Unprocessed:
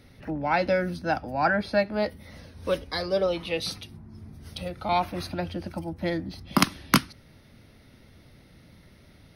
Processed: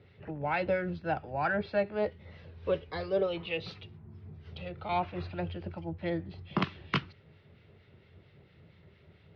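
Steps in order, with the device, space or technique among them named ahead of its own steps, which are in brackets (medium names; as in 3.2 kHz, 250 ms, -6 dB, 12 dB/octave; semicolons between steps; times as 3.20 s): guitar amplifier with harmonic tremolo (harmonic tremolo 4.4 Hz, depth 50%, crossover 1.2 kHz; saturation -13.5 dBFS, distortion -18 dB; cabinet simulation 81–3600 Hz, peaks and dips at 88 Hz +9 dB, 150 Hz +5 dB, 260 Hz -10 dB, 410 Hz +9 dB, 2.8 kHz +4 dB); trim -4 dB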